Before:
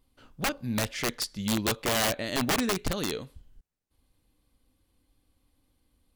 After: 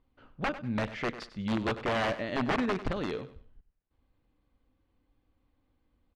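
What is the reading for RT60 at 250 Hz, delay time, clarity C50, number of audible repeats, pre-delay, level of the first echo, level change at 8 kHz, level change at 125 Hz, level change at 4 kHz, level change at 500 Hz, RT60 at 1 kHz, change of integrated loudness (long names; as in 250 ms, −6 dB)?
no reverb audible, 97 ms, no reverb audible, 2, no reverb audible, −14.0 dB, −22.0 dB, −2.0 dB, −10.0 dB, −0.5 dB, no reverb audible, −3.5 dB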